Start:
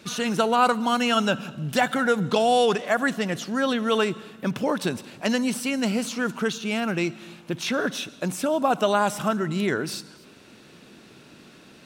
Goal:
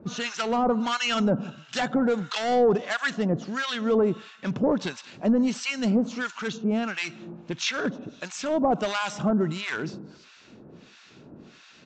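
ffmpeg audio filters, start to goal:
ffmpeg -i in.wav -filter_complex "[0:a]lowshelf=frequency=470:gain=3,aresample=16000,volume=17.5dB,asoftclip=hard,volume=-17.5dB,aresample=44100,acrossover=split=1000[link_01][link_02];[link_01]aeval=exprs='val(0)*(1-1/2+1/2*cos(2*PI*1.5*n/s))':channel_layout=same[link_03];[link_02]aeval=exprs='val(0)*(1-1/2-1/2*cos(2*PI*1.5*n/s))':channel_layout=same[link_04];[link_03][link_04]amix=inputs=2:normalize=0,volume=2.5dB" out.wav

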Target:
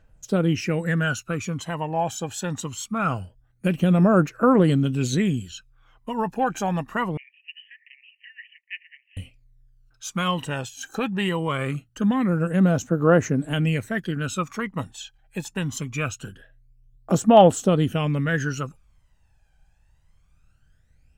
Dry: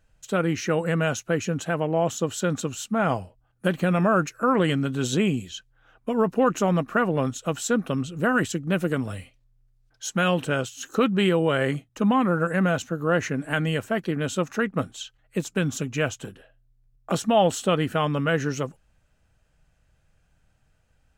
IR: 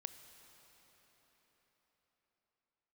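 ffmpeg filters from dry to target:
-filter_complex "[0:a]aphaser=in_gain=1:out_gain=1:delay=1.3:decay=0.67:speed=0.23:type=triangular,asettb=1/sr,asplit=3[link_01][link_02][link_03];[link_01]atrim=end=7.174[link_04];[link_02]atrim=start=7.17:end=9.17,asetpts=PTS-STARTPTS,afade=type=in:duration=0.004:curve=qsin,afade=type=out:start_time=1.996:duration=0.004:curve=qsin,asuperpass=centerf=2300:order=20:qfactor=1.9[link_05];[link_03]atrim=start=9.166[link_06];[link_04][link_05]acrossfade=duration=0.004:curve1=hsin:curve2=qsin[link_07];[link_07][link_06]acrossfade=duration=0.004:curve1=qsin:curve2=hsin,volume=-2.5dB"

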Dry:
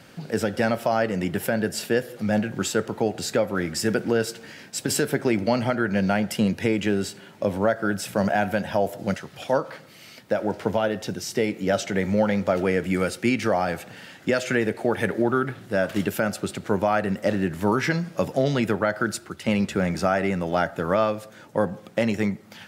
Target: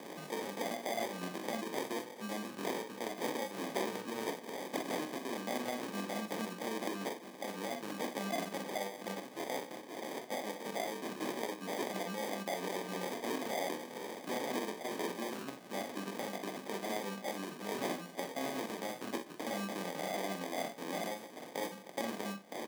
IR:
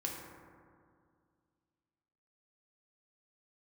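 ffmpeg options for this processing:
-af "flanger=delay=20:depth=6.8:speed=0.12,aresample=16000,volume=22dB,asoftclip=hard,volume=-22dB,aresample=44100,highshelf=frequency=2000:gain=11,acompressor=threshold=-44dB:ratio=2.5,equalizer=frequency=400:width_type=o:width=1.3:gain=-7,acrusher=samples=32:mix=1:aa=0.000001,highpass=frequency=230:width=0.5412,highpass=frequency=230:width=1.3066,aecho=1:1:45|61:0.335|0.282,volume=4.5dB"

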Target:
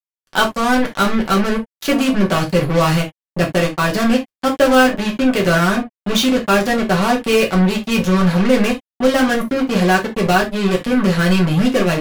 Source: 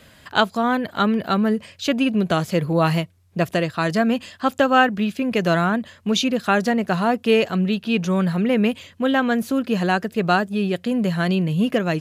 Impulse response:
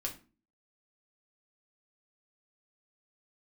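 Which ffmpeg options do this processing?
-filter_complex "[0:a]acontrast=79,acrusher=bits=2:mix=0:aa=0.5[link_01];[1:a]atrim=start_sample=2205,atrim=end_sample=3528[link_02];[link_01][link_02]afir=irnorm=-1:irlink=0,volume=-2.5dB"

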